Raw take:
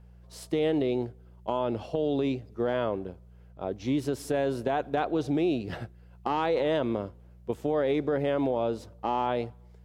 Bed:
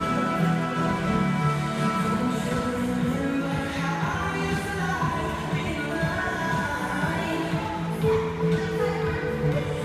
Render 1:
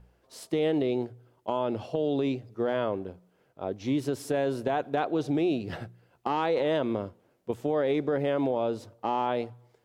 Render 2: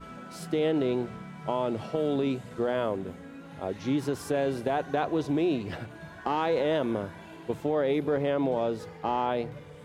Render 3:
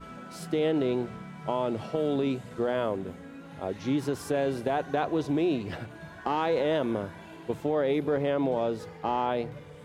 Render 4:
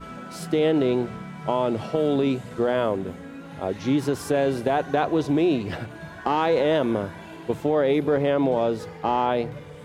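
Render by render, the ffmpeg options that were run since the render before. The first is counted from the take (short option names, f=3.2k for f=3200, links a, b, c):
-af "bandreject=f=60:t=h:w=4,bandreject=f=120:t=h:w=4,bandreject=f=180:t=h:w=4"
-filter_complex "[1:a]volume=-19dB[a];[0:a][a]amix=inputs=2:normalize=0"
-af anull
-af "volume=5.5dB"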